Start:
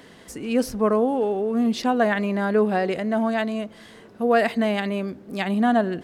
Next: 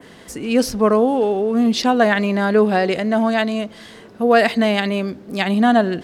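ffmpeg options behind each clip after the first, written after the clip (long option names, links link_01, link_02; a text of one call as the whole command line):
ffmpeg -i in.wav -af "adynamicequalizer=threshold=0.00708:dfrequency=4500:dqfactor=0.86:tfrequency=4500:tqfactor=0.86:attack=5:release=100:ratio=0.375:range=3:mode=boostabove:tftype=bell,volume=5dB" out.wav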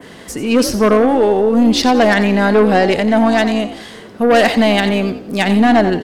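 ffmpeg -i in.wav -filter_complex "[0:a]aeval=exprs='0.794*(cos(1*acos(clip(val(0)/0.794,-1,1)))-cos(1*PI/2))+0.158*(cos(5*acos(clip(val(0)/0.794,-1,1)))-cos(5*PI/2))+0.0398*(cos(8*acos(clip(val(0)/0.794,-1,1)))-cos(8*PI/2))':channel_layout=same,asplit=2[link_01][link_02];[link_02]asplit=4[link_03][link_04][link_05][link_06];[link_03]adelay=89,afreqshift=57,volume=-12dB[link_07];[link_04]adelay=178,afreqshift=114,volume=-21.1dB[link_08];[link_05]adelay=267,afreqshift=171,volume=-30.2dB[link_09];[link_06]adelay=356,afreqshift=228,volume=-39.4dB[link_10];[link_07][link_08][link_09][link_10]amix=inputs=4:normalize=0[link_11];[link_01][link_11]amix=inputs=2:normalize=0" out.wav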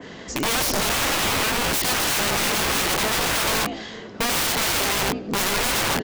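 ffmpeg -i in.wav -af "aresample=16000,aresample=44100,aeval=exprs='(mod(5.96*val(0)+1,2)-1)/5.96':channel_layout=same,volume=-2dB" out.wav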